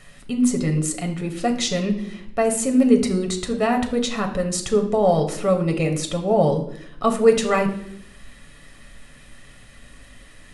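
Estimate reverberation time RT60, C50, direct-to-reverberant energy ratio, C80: 0.70 s, 10.5 dB, 3.0 dB, 13.0 dB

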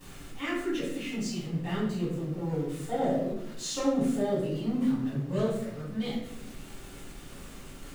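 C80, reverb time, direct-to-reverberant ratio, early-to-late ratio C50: 5.5 dB, 0.85 s, -10.0 dB, 2.0 dB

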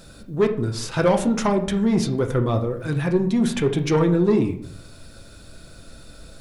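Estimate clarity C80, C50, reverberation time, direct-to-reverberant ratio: 14.5 dB, 10.5 dB, 0.60 s, 4.0 dB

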